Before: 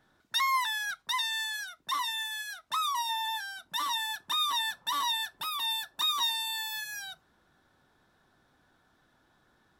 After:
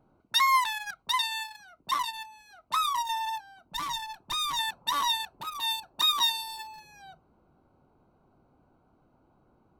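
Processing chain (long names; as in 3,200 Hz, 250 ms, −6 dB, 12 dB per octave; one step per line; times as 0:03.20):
adaptive Wiener filter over 25 samples
0:03.40–0:04.59: tube saturation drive 32 dB, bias 0.55
level +6 dB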